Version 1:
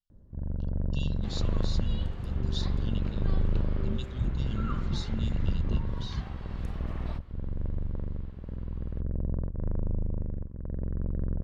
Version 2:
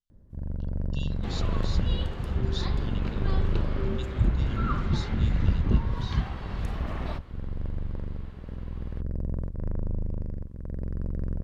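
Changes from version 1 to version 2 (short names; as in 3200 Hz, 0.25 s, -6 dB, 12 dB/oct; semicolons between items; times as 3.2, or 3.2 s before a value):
first sound: remove LPF 1600 Hz 12 dB/oct; second sound +7.5 dB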